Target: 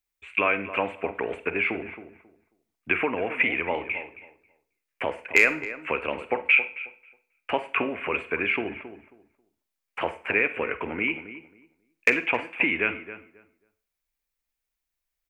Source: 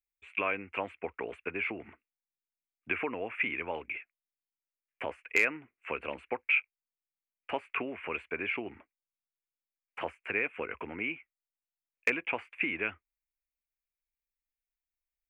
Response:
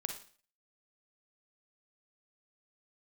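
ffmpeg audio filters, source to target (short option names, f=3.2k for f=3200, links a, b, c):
-filter_complex "[0:a]asplit=2[a][b];[b]adelay=270,lowpass=f=1.6k:p=1,volume=-12dB,asplit=2[c][d];[d]adelay=270,lowpass=f=1.6k:p=1,volume=0.21,asplit=2[e][f];[f]adelay=270,lowpass=f=1.6k:p=1,volume=0.21[g];[a][c][e][g]amix=inputs=4:normalize=0,asplit=2[h][i];[1:a]atrim=start_sample=2205,asetrate=48510,aresample=44100[j];[i][j]afir=irnorm=-1:irlink=0,volume=1dB[k];[h][k]amix=inputs=2:normalize=0,volume=2.5dB"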